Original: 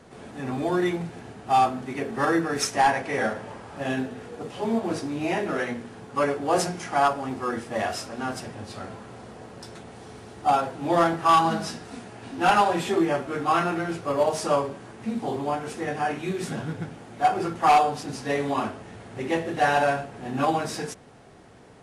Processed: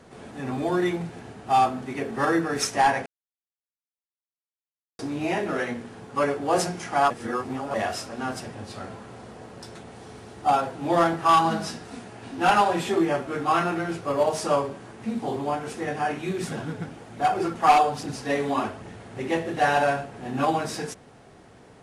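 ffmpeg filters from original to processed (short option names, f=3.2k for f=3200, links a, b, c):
-filter_complex "[0:a]asettb=1/sr,asplit=3[a][b][c];[a]atrim=end=16.374[d];[b]atrim=start=16.37:end=18.93,asetpts=PTS-STARTPTS,afade=t=in:d=0.004:c=qsin,afade=t=out:st=2.556:d=0.004:c=qsin,aphaser=in_gain=1:out_gain=1:delay=4.9:decay=0.33:speed=1.2:type=triangular[e];[c]atrim=start=18.926[f];[d][e]acrossfade=d=0.004:c1=hsin:c2=qsin[g];[g][f]acrossfade=d=0.004:c1=qsin:c2=hsin,asplit=5[h][i][j][k][l];[h]atrim=end=3.06,asetpts=PTS-STARTPTS,afade=t=out:st=3.056:d=0.004:c=hsin[m];[i]atrim=start=3.06:end=4.99,asetpts=PTS-STARTPTS,volume=0[n];[j]atrim=start=4.99:end=7.102,asetpts=PTS-STARTPTS,afade=t=in:d=0.004:c=hsin[o];[k]atrim=start=7.098:end=7.742,asetpts=PTS-STARTPTS,areverse[p];[l]atrim=start=7.738[q];[m][n][o]concat=n=3:v=0:a=1[r];[r][p]acrossfade=d=0.004:c1=hsin:c2=hsin[s];[s][q]acrossfade=d=0.004:c1=hsin:c2=hsin"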